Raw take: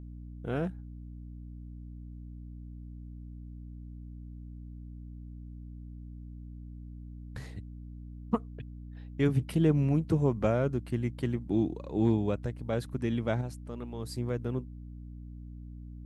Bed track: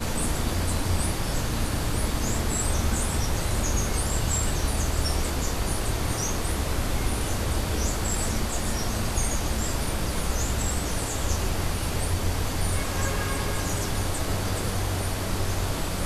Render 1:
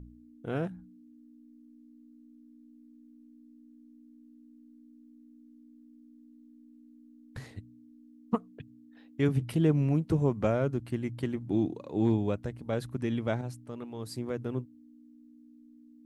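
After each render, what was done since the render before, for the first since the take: de-hum 60 Hz, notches 3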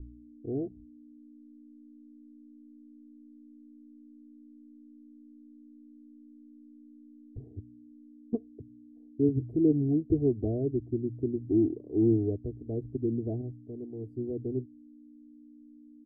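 inverse Chebyshev low-pass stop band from 1200 Hz, stop band 50 dB; comb 2.8 ms, depth 89%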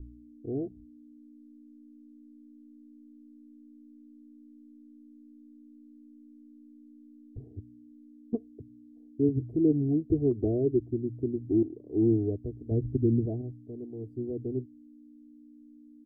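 10.31–10.84 dynamic EQ 370 Hz, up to +6 dB, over -44 dBFS; 11.63–12.04 fade in equal-power, from -14 dB; 12.71–13.26 low shelf 230 Hz +11.5 dB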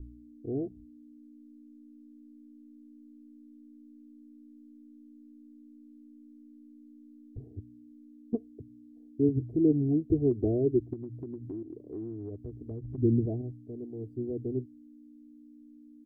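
10.93–12.98 compressor 10:1, threshold -35 dBFS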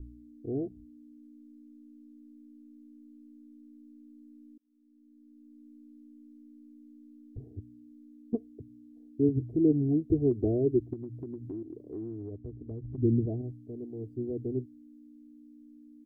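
4.58–5.67 fade in; 12.22–13.38 air absorption 490 m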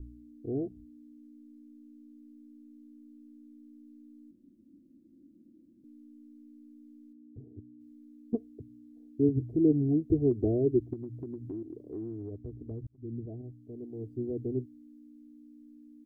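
4.31–5.84 room tone; 7.12–7.79 band-pass 190 Hz -> 320 Hz, Q 0.89; 12.87–14.08 fade in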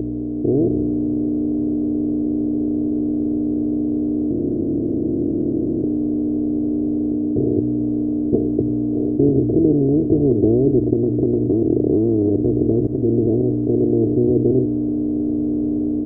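per-bin compression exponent 0.2; AGC gain up to 5.5 dB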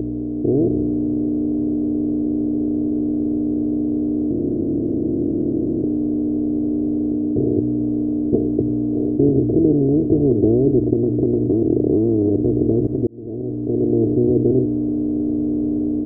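13.07–13.95 fade in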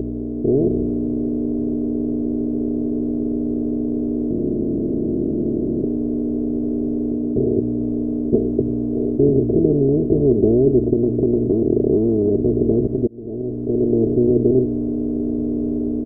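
low shelf 68 Hz +5.5 dB; comb 4.9 ms, depth 41%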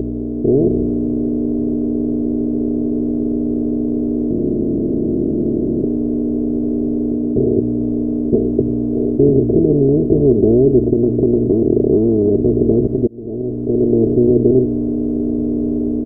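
gain +3.5 dB; limiter -2 dBFS, peak gain reduction 2.5 dB

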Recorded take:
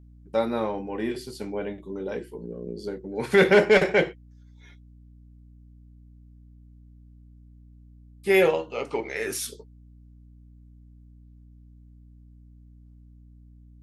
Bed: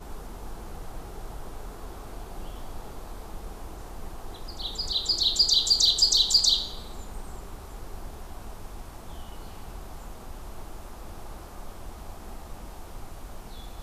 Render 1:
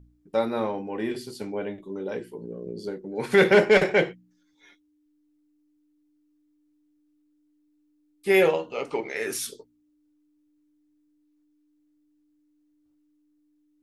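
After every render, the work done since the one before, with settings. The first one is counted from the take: de-hum 60 Hz, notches 4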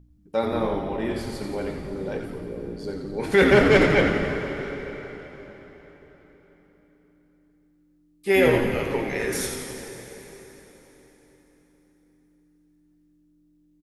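frequency-shifting echo 86 ms, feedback 59%, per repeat -130 Hz, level -6 dB; plate-style reverb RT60 4.4 s, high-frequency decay 0.85×, DRR 6 dB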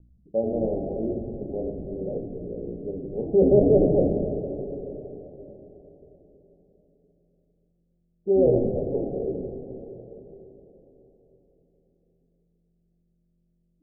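steep low-pass 710 Hz 72 dB/oct; notches 50/100/150/200/250/300 Hz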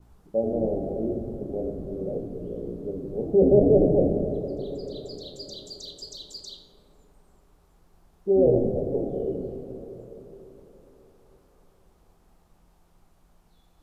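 add bed -20.5 dB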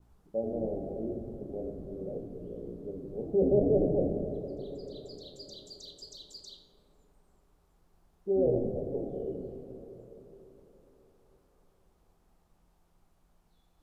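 gain -7.5 dB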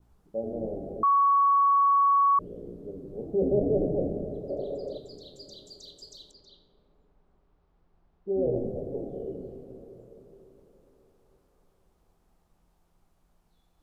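1.03–2.39 bleep 1120 Hz -18 dBFS; 4.49–4.98 bell 610 Hz +12.5 dB 1 oct; 6.31–8.55 air absorption 230 m

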